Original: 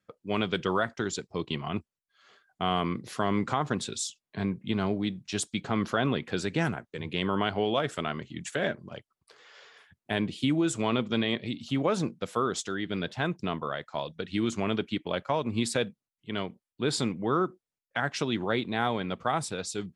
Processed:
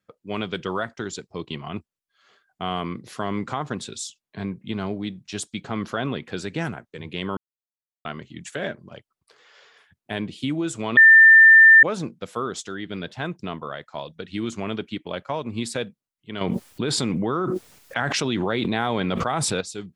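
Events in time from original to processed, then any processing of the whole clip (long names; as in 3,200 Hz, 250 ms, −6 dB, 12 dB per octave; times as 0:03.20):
0:07.37–0:08.05: silence
0:10.97–0:11.83: beep over 1,790 Hz −7 dBFS
0:16.41–0:19.61: envelope flattener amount 100%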